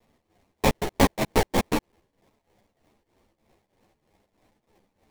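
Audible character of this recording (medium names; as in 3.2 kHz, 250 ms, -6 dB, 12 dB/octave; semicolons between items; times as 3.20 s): a quantiser's noise floor 12-bit, dither triangular; tremolo triangle 3.2 Hz, depth 85%; aliases and images of a low sample rate 1.4 kHz, jitter 20%; a shimmering, thickened sound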